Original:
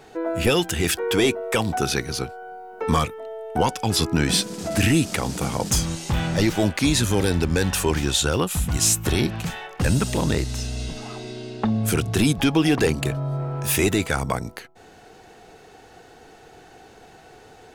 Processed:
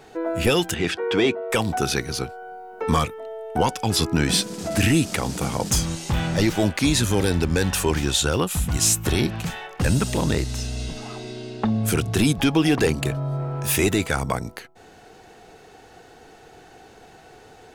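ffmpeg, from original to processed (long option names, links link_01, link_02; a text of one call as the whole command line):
ffmpeg -i in.wav -filter_complex "[0:a]asettb=1/sr,asplit=3[link_01][link_02][link_03];[link_01]atrim=end=0.744[link_04];[link_02]atrim=start=0.74:end=1.5,asetpts=PTS-STARTPTS,afade=type=in:duration=0.004:curve=qsin,afade=type=out:start_time=0.756:duration=0.004:curve=qsin,highpass=120,lowpass=3900[link_05];[link_03]atrim=start=1.496[link_06];[link_04][link_05]acrossfade=duration=0.004:curve1=hsin:curve2=qsin[link_07];[link_07][link_06]acrossfade=duration=0.004:curve1=qsin:curve2=hsin" out.wav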